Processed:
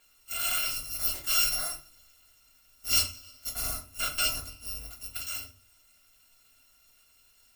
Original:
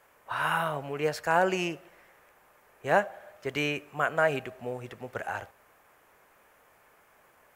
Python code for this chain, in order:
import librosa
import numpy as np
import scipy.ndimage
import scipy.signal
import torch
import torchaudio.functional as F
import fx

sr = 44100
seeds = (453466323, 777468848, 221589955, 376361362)

y = fx.bit_reversed(x, sr, seeds[0], block=256)
y = fx.tilt_shelf(y, sr, db=3.0, hz=970.0, at=(3.49, 4.86))
y = fx.room_shoebox(y, sr, seeds[1], volume_m3=140.0, walls='furnished', distance_m=1.7)
y = y * librosa.db_to_amplitude(-4.0)